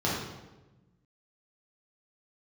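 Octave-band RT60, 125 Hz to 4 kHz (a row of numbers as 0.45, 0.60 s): 1.7, 1.6, 1.2, 1.0, 0.90, 0.80 s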